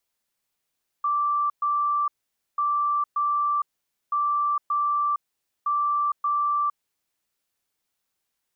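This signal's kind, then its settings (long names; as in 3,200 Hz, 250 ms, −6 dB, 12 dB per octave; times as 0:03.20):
beeps in groups sine 1,170 Hz, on 0.46 s, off 0.12 s, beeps 2, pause 0.50 s, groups 4, −20.5 dBFS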